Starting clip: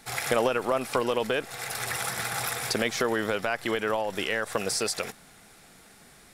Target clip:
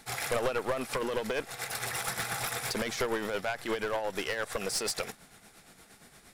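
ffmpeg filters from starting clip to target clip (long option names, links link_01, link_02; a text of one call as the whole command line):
ffmpeg -i in.wav -af "tremolo=f=8.6:d=0.55,aeval=exprs='clip(val(0),-1,0.0335)':channel_layout=same" out.wav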